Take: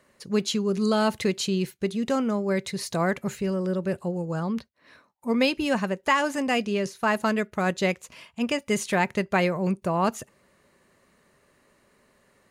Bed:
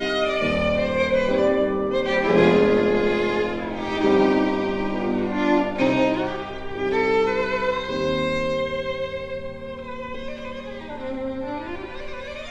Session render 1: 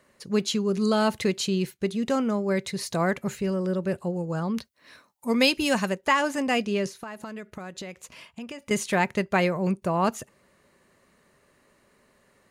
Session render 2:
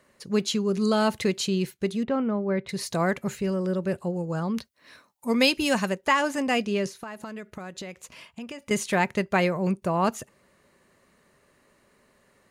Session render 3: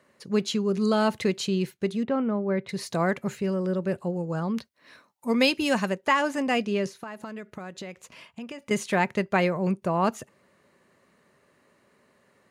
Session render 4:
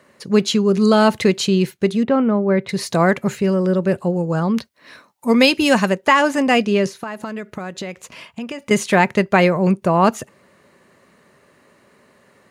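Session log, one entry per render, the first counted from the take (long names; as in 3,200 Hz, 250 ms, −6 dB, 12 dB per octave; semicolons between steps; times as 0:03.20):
0:04.54–0:05.95: high-shelf EQ 3,500 Hz +10.5 dB; 0:06.91–0:08.71: downward compressor 16 to 1, threshold −33 dBFS
0:02.03–0:02.69: high-frequency loss of the air 410 metres
high-pass filter 96 Hz; high-shelf EQ 4,800 Hz −6 dB
level +9.5 dB; brickwall limiter −2 dBFS, peak gain reduction 2 dB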